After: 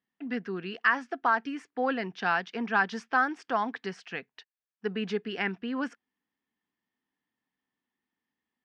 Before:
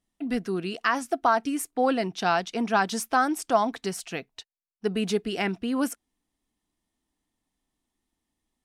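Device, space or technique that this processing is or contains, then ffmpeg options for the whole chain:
kitchen radio: -af "highpass=180,equalizer=f=320:t=q:w=4:g=-6,equalizer=f=640:t=q:w=4:g=-8,equalizer=f=1.7k:t=q:w=4:g=8,equalizer=f=3.9k:t=q:w=4:g=-7,lowpass=f=4.4k:w=0.5412,lowpass=f=4.4k:w=1.3066,volume=-3dB"

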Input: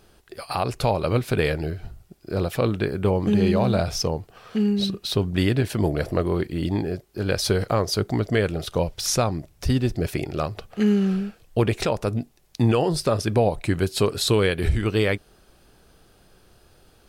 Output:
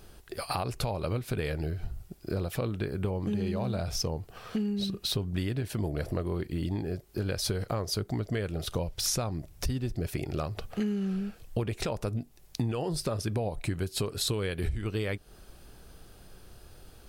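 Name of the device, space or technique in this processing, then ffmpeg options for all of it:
ASMR close-microphone chain: -af "lowshelf=f=110:g=7.5,acompressor=threshold=-29dB:ratio=5,highshelf=f=8.4k:g=5.5"

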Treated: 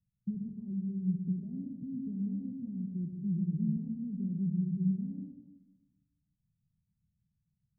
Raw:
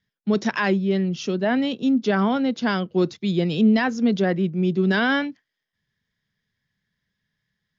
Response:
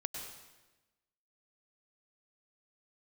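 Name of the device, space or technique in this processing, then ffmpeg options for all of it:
club heard from the street: -filter_complex "[0:a]alimiter=limit=-20dB:level=0:latency=1:release=337,lowpass=f=170:w=0.5412,lowpass=f=170:w=1.3066[a];[1:a]atrim=start_sample=2205[b];[a][b]afir=irnorm=-1:irlink=0,volume=2.5dB"

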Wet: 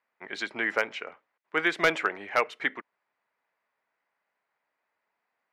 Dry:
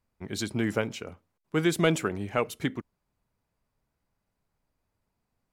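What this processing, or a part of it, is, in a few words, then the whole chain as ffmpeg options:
megaphone: -af "highpass=660,lowpass=2.7k,equalizer=f=1.9k:t=o:w=0.59:g=7,asoftclip=type=hard:threshold=-18dB,volume=5dB"

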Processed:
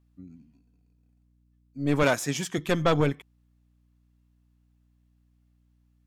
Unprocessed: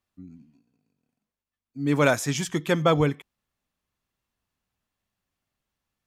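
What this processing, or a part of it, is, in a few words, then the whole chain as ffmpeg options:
valve amplifier with mains hum: -filter_complex "[0:a]aeval=exprs='(tanh(6.31*val(0)+0.65)-tanh(0.65))/6.31':c=same,aeval=exprs='val(0)+0.000562*(sin(2*PI*60*n/s)+sin(2*PI*2*60*n/s)/2+sin(2*PI*3*60*n/s)/3+sin(2*PI*4*60*n/s)/4+sin(2*PI*5*60*n/s)/5)':c=same,asettb=1/sr,asplit=3[a][b][c];[a]atrim=end=2.034[d];[b]atrim=start=2.03:end=2.58,asetpts=PTS-STARTPTS,afade=t=in:d=0.004:c=qsin,afade=t=out:st=0.546:d=0.004:c=qsin,highpass=140[e];[c]atrim=start=2.576[f];[d][e]acrossfade=d=0.004:c1=hsin:c2=qsin[g];[g][f]acrossfade=d=0.004:c1=qsin:c2=hsin,volume=1.5dB"

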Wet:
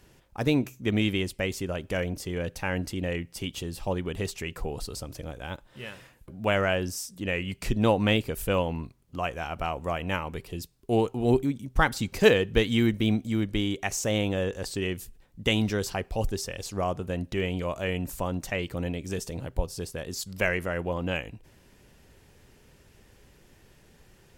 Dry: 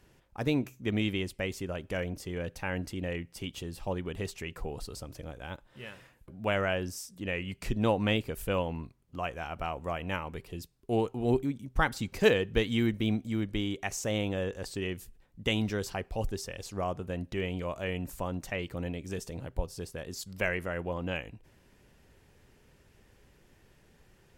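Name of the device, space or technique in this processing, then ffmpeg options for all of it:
exciter from parts: -filter_complex "[0:a]asplit=2[a][b];[b]highpass=2.5k,asoftclip=type=tanh:threshold=-39.5dB,volume=-8.5dB[c];[a][c]amix=inputs=2:normalize=0,volume=4.5dB"

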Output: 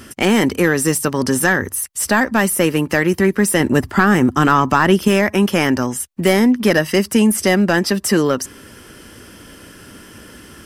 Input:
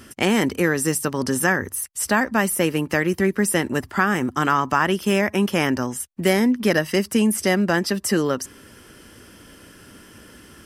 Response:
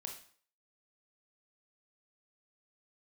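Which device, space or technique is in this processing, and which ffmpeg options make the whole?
saturation between pre-emphasis and de-emphasis: -filter_complex "[0:a]highshelf=f=2.9k:g=10.5,asoftclip=type=tanh:threshold=-8dB,highshelf=f=2.9k:g=-10.5,asettb=1/sr,asplit=3[a][b][c];[a]atrim=end=3.604[d];[b]atrim=start=3.6:end=5.08,asetpts=PTS-STARTPTS,afade=t=in:d=0.004:c=qsin,afade=t=out:st=1.476:d=0.004:c=qsin,lowshelf=f=470:g=5.5[e];[c]atrim=start=5.076[f];[d][e]acrossfade=d=0.004:c1=hsin:c2=qsin[g];[g][f]acrossfade=d=0.004:c1=qsin:c2=hsin,volume=6dB"

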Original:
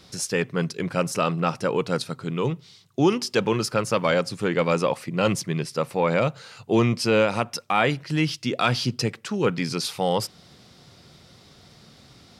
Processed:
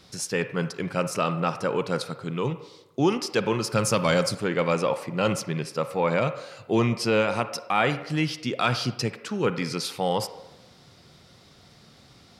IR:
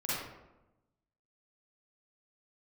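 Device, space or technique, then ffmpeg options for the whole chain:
filtered reverb send: -filter_complex "[0:a]asettb=1/sr,asplit=3[a][b][c];[a]atrim=end=3.724[d];[b]atrim=start=3.72:end=4.35,asetpts=PTS-STARTPTS,afade=t=in:d=0.004:c=qsin,afade=t=out:st=0.626:d=0.004:c=qsin,bass=f=250:g=7,treble=f=4k:g=11[e];[c]atrim=start=4.346[f];[d][e]acrossfade=d=0.004:c1=hsin:c2=qsin[g];[g][f]acrossfade=d=0.004:c1=qsin:c2=hsin,asplit=2[h][i];[i]highpass=430,lowpass=3k[j];[1:a]atrim=start_sample=2205[k];[j][k]afir=irnorm=-1:irlink=0,volume=-14.5dB[l];[h][l]amix=inputs=2:normalize=0,volume=-2.5dB"

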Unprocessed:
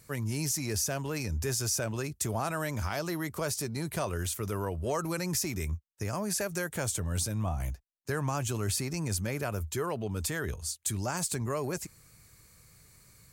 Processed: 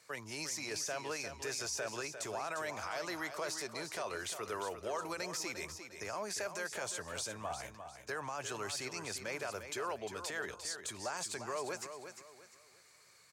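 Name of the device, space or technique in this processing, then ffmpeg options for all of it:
DJ mixer with the lows and highs turned down: -filter_complex "[0:a]highpass=94,acrossover=split=430 7400:gain=0.1 1 0.158[a][b][c];[a][b][c]amix=inputs=3:normalize=0,alimiter=level_in=6dB:limit=-24dB:level=0:latency=1:release=27,volume=-6dB,aecho=1:1:351|702|1053|1404:0.355|0.11|0.0341|0.0106"

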